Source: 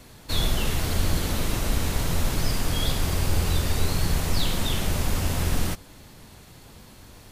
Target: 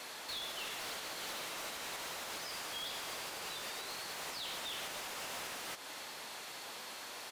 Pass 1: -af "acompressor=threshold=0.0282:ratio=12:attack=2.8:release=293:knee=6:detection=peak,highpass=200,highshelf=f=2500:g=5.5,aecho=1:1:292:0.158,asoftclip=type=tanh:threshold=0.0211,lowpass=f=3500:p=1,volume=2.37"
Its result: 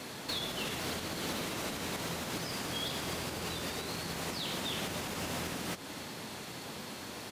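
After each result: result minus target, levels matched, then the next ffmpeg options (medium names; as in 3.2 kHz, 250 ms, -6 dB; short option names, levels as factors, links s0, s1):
250 Hz band +12.0 dB; saturation: distortion -8 dB
-af "acompressor=threshold=0.0282:ratio=12:attack=2.8:release=293:knee=6:detection=peak,highpass=640,highshelf=f=2500:g=5.5,aecho=1:1:292:0.158,asoftclip=type=tanh:threshold=0.0211,lowpass=f=3500:p=1,volume=2.37"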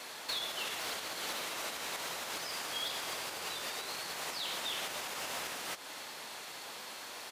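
saturation: distortion -9 dB
-af "acompressor=threshold=0.0282:ratio=12:attack=2.8:release=293:knee=6:detection=peak,highpass=640,highshelf=f=2500:g=5.5,aecho=1:1:292:0.158,asoftclip=type=tanh:threshold=0.0075,lowpass=f=3500:p=1,volume=2.37"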